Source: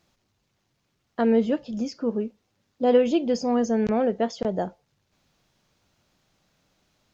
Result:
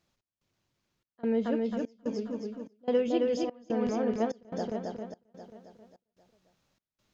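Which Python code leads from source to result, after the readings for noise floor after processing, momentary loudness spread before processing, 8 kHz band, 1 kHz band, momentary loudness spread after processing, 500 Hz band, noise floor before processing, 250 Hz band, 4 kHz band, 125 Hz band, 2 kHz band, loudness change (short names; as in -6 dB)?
under -85 dBFS, 11 LU, n/a, -8.5 dB, 15 LU, -6.5 dB, -74 dBFS, -6.5 dB, -7.0 dB, -6.5 dB, -7.0 dB, -7.0 dB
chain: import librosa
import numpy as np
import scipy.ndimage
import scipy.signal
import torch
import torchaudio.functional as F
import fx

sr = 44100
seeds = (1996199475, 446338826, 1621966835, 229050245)

y = fx.peak_eq(x, sr, hz=760.0, db=-2.5, octaves=0.2)
y = fx.echo_feedback(y, sr, ms=268, feedback_pct=54, wet_db=-3.0)
y = fx.step_gate(y, sr, bpm=146, pattern='xx..xxxx', floor_db=-24.0, edge_ms=4.5)
y = F.gain(torch.from_numpy(y), -8.0).numpy()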